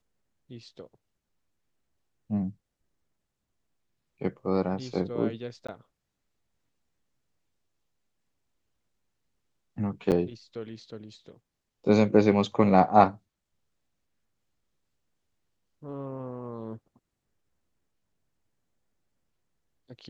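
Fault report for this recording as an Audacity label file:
5.670000	5.680000	gap 15 ms
10.110000	10.120000	gap 8.3 ms

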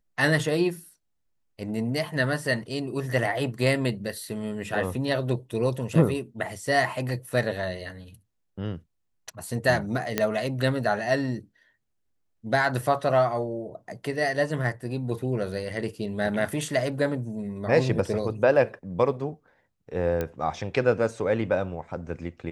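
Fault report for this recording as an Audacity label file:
10.180000	10.180000	pop -8 dBFS
20.210000	20.210000	pop -15 dBFS

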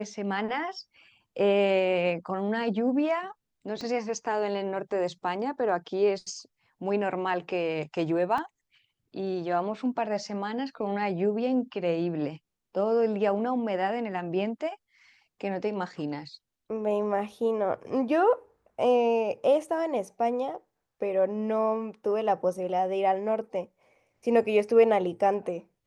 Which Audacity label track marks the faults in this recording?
3.810000	3.810000	pop -24 dBFS
8.380000	8.380000	gap 3.2 ms

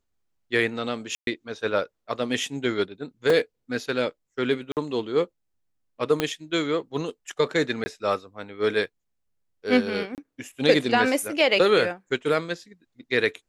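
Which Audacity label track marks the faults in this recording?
1.150000	1.270000	gap 0.122 s
3.300000	3.300000	gap 2.9 ms
4.720000	4.770000	gap 48 ms
6.200000	6.200000	pop -8 dBFS
7.840000	7.860000	gap 20 ms
10.150000	10.180000	gap 28 ms

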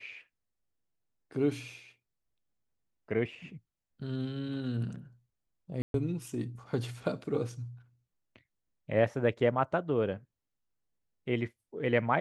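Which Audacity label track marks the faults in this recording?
5.820000	5.940000	gap 0.122 s

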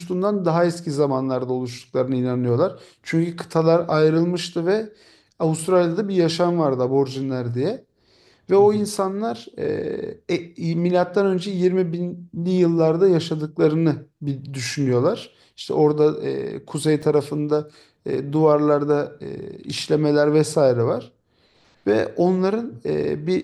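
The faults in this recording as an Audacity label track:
17.020000	17.030000	gap 5.4 ms

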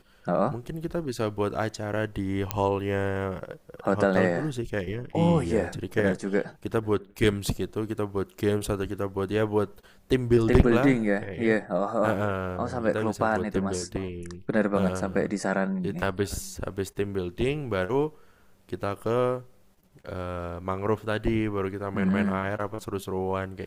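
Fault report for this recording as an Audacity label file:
2.510000	2.510000	pop -8 dBFS

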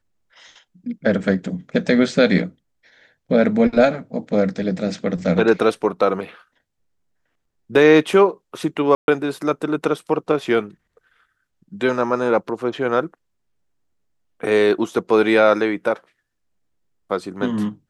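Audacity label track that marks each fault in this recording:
8.950000	9.080000	gap 0.131 s

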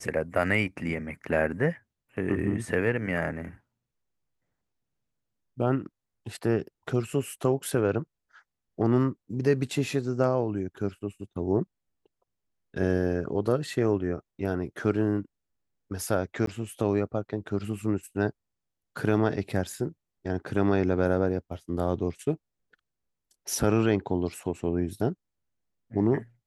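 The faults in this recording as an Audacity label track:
16.460000	16.470000	gap

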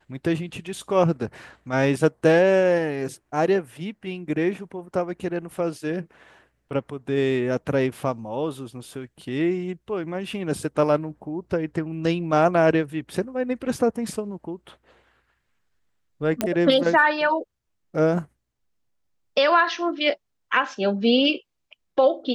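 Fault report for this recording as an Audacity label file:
16.410000	16.410000	pop -7 dBFS

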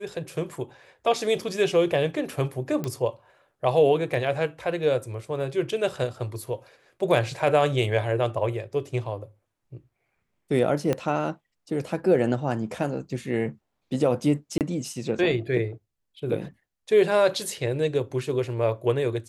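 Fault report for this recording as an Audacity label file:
2.840000	2.840000	pop -16 dBFS
10.930000	10.930000	pop -12 dBFS
14.580000	14.610000	gap 28 ms

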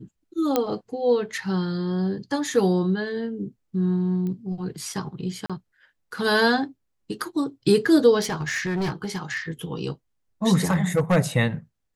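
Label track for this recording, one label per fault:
0.560000	0.560000	pop -7 dBFS
4.270000	4.270000	pop -22 dBFS
5.460000	5.500000	gap 36 ms
8.200000	9.370000	clipped -22 dBFS
10.700000	11.170000	clipped -15 dBFS

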